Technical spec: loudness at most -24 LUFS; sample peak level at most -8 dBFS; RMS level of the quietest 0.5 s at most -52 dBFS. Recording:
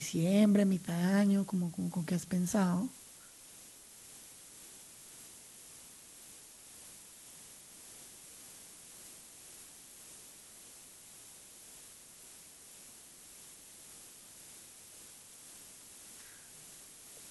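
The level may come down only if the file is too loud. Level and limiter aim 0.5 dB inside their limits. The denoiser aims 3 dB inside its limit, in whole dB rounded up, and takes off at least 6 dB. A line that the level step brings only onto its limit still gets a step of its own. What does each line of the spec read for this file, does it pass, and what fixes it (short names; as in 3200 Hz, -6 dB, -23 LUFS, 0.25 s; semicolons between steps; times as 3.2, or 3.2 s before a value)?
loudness -31.0 LUFS: OK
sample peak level -17.0 dBFS: OK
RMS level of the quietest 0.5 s -55 dBFS: OK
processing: none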